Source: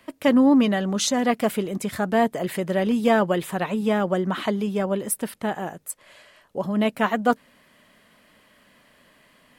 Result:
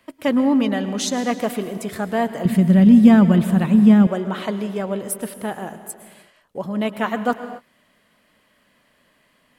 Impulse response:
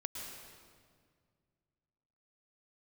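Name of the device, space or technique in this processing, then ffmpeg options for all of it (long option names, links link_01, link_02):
keyed gated reverb: -filter_complex "[0:a]asplit=3[link_01][link_02][link_03];[1:a]atrim=start_sample=2205[link_04];[link_02][link_04]afir=irnorm=-1:irlink=0[link_05];[link_03]apad=whole_len=422796[link_06];[link_05][link_06]sidechaingate=range=-33dB:threshold=-49dB:ratio=16:detection=peak,volume=-4.5dB[link_07];[link_01][link_07]amix=inputs=2:normalize=0,asettb=1/sr,asplit=3[link_08][link_09][link_10];[link_08]atrim=end=2.454[link_11];[link_09]atrim=start=2.45:end=4.07,asetpts=PTS-STARTPTS,afade=type=in:duration=0.004:curve=qsin,afade=type=out:start_time=1.616:duration=0.004:curve=qsin,lowshelf=frequency=310:width_type=q:width=1.5:gain=12.5[link_12];[link_10]atrim=start=4.066[link_13];[link_11][link_12]acrossfade=duration=0.004:curve1=hsin:curve2=qsin[link_14];[link_14][link_13]acrossfade=duration=0.004:curve1=qsin:curve2=hsin,volume=-4dB"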